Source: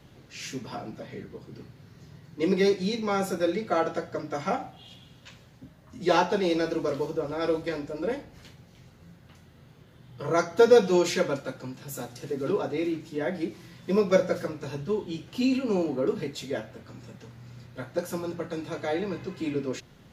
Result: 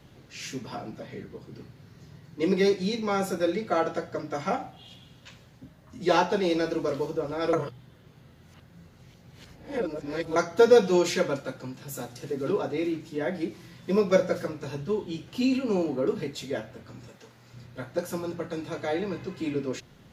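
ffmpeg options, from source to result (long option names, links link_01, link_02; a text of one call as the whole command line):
ffmpeg -i in.wav -filter_complex "[0:a]asettb=1/sr,asplit=3[link_01][link_02][link_03];[link_01]atrim=end=17.084[link_04];[link_02]atrim=start=17.08:end=17.54,asetpts=PTS-STARTPTS,afade=type=in:duration=0.004:curve=qsin,afade=type=out:start_time=0.456:duration=0.004:curve=qsin,bass=frequency=250:gain=-12,treble=frequency=4000:gain=2[link_05];[link_03]atrim=start=17.536[link_06];[link_04][link_05]acrossfade=duration=0.004:curve1=hsin:curve2=qsin[link_07];[link_07][link_06]acrossfade=duration=0.004:curve1=qsin:curve2=hsin,asplit=3[link_08][link_09][link_10];[link_08]atrim=end=7.532[link_11];[link_09]atrim=start=7.528:end=10.362,asetpts=PTS-STARTPTS,areverse[link_12];[link_10]atrim=start=10.358[link_13];[link_11][link_12]acrossfade=duration=0.004:curve1=hsin:curve2=hsin[link_14];[link_14][link_13]acrossfade=duration=0.004:curve1=hsin:curve2=hsin" out.wav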